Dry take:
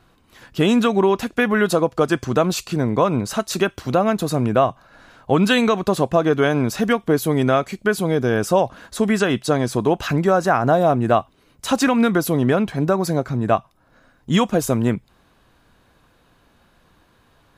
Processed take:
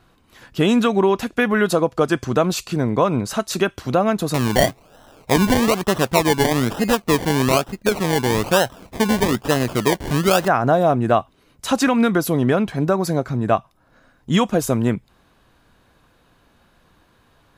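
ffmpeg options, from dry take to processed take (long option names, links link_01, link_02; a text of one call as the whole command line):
ffmpeg -i in.wav -filter_complex "[0:a]asettb=1/sr,asplit=3[link_01][link_02][link_03];[link_01]atrim=end=4.344[link_04];[link_02]atrim=start=4.34:end=10.48,asetpts=PTS-STARTPTS,afade=type=in:duration=0.004:curve=qsin,afade=type=out:start_time=6.136:duration=0.004:curve=qsin,acrusher=samples=27:mix=1:aa=0.000001:lfo=1:lforange=16.2:lforate=1.1[link_05];[link_03]atrim=start=10.476[link_06];[link_04][link_05]acrossfade=duration=0.004:curve1=hsin:curve2=qsin[link_07];[link_07][link_06]acrossfade=duration=0.004:curve1=qsin:curve2=hsin" out.wav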